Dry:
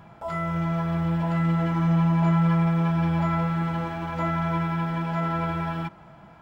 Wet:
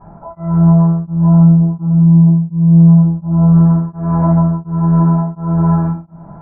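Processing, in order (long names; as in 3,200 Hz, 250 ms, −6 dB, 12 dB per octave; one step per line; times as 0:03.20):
treble cut that deepens with the level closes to 370 Hz, closed at −18.5 dBFS
low-pass filter 1,200 Hz 24 dB per octave
brickwall limiter −23 dBFS, peak gain reduction 7 dB
rectangular room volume 110 cubic metres, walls mixed, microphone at 4.1 metres
tremolo along a rectified sine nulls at 1.4 Hz
level −1.5 dB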